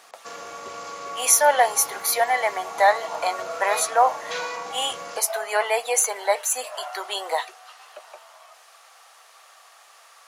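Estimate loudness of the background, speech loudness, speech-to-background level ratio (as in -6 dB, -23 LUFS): -35.0 LUFS, -22.0 LUFS, 13.0 dB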